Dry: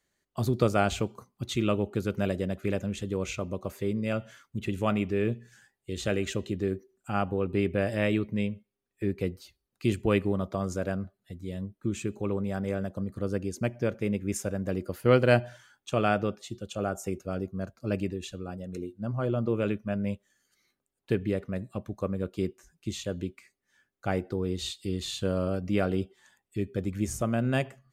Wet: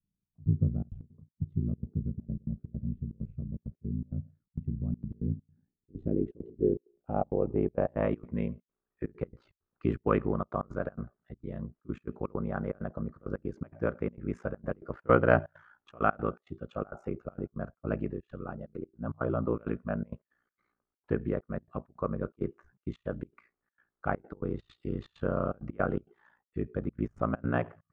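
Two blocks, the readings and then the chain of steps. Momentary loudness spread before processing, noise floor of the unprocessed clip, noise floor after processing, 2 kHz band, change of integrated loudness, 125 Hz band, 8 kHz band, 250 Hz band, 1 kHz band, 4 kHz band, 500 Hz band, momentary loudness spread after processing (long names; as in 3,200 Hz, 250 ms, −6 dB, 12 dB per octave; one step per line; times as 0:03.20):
11 LU, −84 dBFS, below −85 dBFS, −4.0 dB, −3.5 dB, −3.0 dB, below −35 dB, −4.0 dB, −1.0 dB, below −20 dB, −3.5 dB, 12 LU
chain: low-pass filter sweep 150 Hz → 1,300 Hz, 0:05.08–0:08.33
gate pattern "xxxx.xxxx.x.xx." 164 BPM −24 dB
ring modulation 29 Hz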